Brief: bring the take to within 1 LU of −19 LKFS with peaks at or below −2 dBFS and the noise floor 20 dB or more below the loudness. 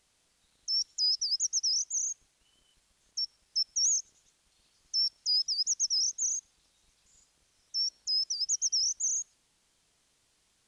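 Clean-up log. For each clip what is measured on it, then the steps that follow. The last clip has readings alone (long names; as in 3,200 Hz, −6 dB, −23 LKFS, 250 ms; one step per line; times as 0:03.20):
integrated loudness −28.5 LKFS; sample peak −21.0 dBFS; target loudness −19.0 LKFS
→ level +9.5 dB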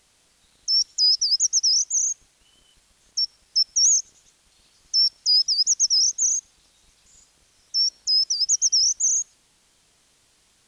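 integrated loudness −19.0 LKFS; sample peak −11.5 dBFS; background noise floor −62 dBFS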